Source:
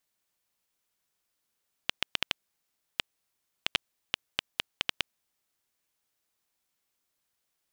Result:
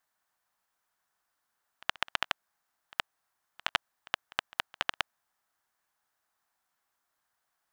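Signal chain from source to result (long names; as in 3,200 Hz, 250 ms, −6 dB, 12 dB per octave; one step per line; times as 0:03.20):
flat-topped bell 1,100 Hz +11 dB
backwards echo 69 ms −22 dB
level −3 dB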